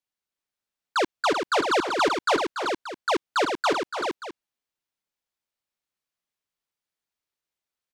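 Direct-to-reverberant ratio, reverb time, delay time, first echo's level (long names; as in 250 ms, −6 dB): no reverb audible, no reverb audible, 287 ms, −9.5 dB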